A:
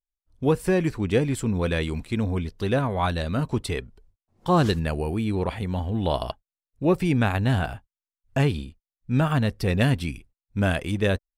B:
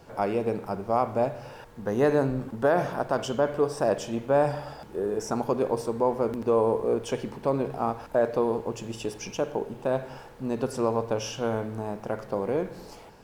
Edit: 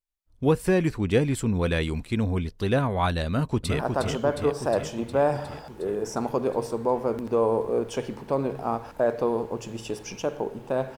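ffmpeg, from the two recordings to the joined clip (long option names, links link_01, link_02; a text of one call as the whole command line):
ffmpeg -i cue0.wav -i cue1.wav -filter_complex "[0:a]apad=whole_dur=10.97,atrim=end=10.97,atrim=end=3.792[link_01];[1:a]atrim=start=2.938:end=10.12[link_02];[link_01][link_02]acrossfade=duration=0.004:curve1=hsin:curve2=hsin,asplit=2[link_03][link_04];[link_04]afade=type=in:start_time=3.27:duration=0.01,afade=type=out:start_time=3.79:duration=0.01,aecho=0:1:360|720|1080|1440|1800|2160|2520|2880|3240|3600|3960|4320:0.530884|0.371619|0.260133|0.182093|0.127465|0.0892257|0.062458|0.0437206|0.0306044|0.0214231|0.0149962|0.0104973[link_05];[link_03][link_05]amix=inputs=2:normalize=0" out.wav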